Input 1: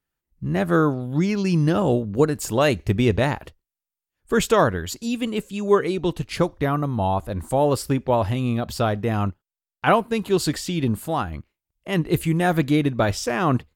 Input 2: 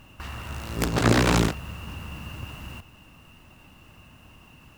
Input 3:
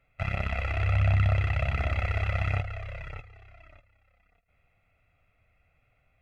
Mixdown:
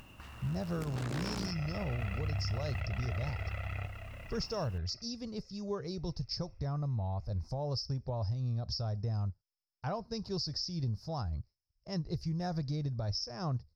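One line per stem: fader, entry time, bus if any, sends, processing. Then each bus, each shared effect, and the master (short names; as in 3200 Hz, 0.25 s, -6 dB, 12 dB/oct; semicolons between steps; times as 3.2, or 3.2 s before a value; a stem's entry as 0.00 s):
-1.5 dB, 0.00 s, no send, EQ curve 120 Hz 0 dB, 290 Hz -19 dB, 620 Hz -11 dB, 3200 Hz -26 dB, 5300 Hz +15 dB, 7600 Hz -29 dB; compressor, threshold -30 dBFS, peak gain reduction 11.5 dB; high shelf 6000 Hz -5 dB
-15.0 dB, 0.00 s, no send, upward compressor, threshold -29 dBFS
-9.0 dB, 1.25 s, no send, dry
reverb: off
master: limiter -27 dBFS, peak gain reduction 8.5 dB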